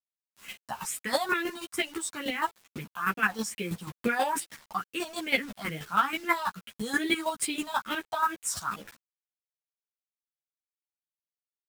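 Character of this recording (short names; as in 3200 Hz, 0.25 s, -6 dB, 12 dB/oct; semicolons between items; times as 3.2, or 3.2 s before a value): phasing stages 4, 2.3 Hz, lowest notch 320–1100 Hz; a quantiser's noise floor 8-bit, dither none; chopped level 6.2 Hz, depth 60%, duty 20%; a shimmering, thickened sound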